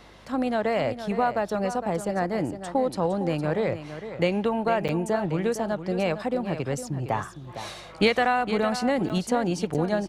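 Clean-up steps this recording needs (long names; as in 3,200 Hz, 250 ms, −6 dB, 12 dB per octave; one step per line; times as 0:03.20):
hum removal 50.2 Hz, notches 5
repair the gap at 0:04.88/0:09.09/0:09.74, 8 ms
echo removal 459 ms −11 dB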